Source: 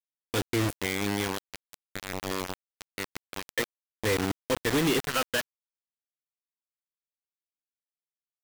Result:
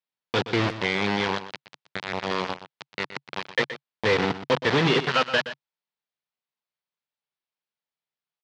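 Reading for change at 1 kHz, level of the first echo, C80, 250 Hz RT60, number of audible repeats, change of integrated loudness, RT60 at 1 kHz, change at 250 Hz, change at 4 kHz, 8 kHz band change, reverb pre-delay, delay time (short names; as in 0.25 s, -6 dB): +7.5 dB, -12.5 dB, none, none, 1, +4.5 dB, none, +2.0 dB, +5.5 dB, -8.5 dB, none, 0.122 s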